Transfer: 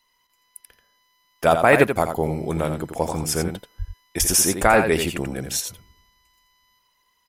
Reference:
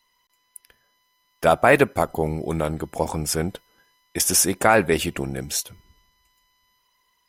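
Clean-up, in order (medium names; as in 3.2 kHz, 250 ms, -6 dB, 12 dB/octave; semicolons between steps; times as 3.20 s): de-plosive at 3.78/4.19/4.61 s; inverse comb 85 ms -7.5 dB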